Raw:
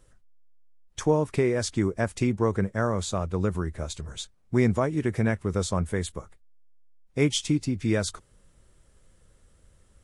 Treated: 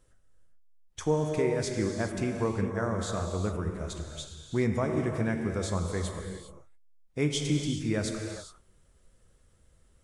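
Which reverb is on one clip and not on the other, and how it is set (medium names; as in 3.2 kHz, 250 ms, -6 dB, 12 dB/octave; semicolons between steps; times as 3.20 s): gated-style reverb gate 440 ms flat, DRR 3 dB; trim -5.5 dB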